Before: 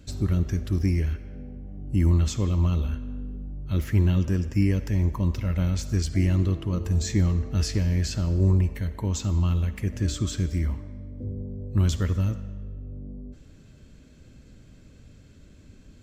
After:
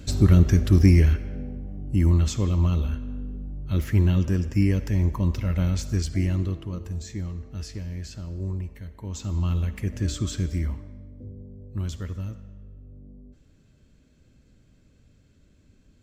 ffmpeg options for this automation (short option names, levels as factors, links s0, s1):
-af "volume=7.5,afade=t=out:st=1.04:d=0.91:silence=0.446684,afade=t=out:st=5.71:d=1.36:silence=0.281838,afade=t=in:st=8.99:d=0.57:silence=0.334965,afade=t=out:st=10.55:d=0.78:silence=0.421697"